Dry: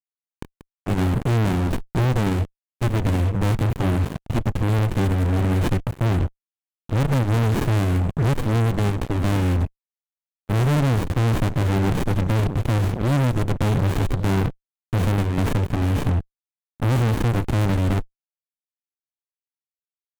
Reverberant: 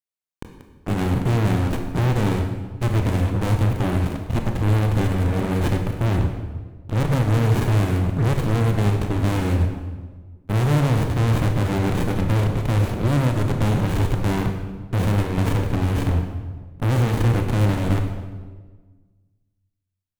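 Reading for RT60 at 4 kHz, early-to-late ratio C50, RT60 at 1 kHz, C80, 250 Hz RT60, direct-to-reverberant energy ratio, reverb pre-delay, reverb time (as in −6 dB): 1.0 s, 6.0 dB, 1.3 s, 8.0 dB, 1.7 s, 4.0 dB, 23 ms, 1.5 s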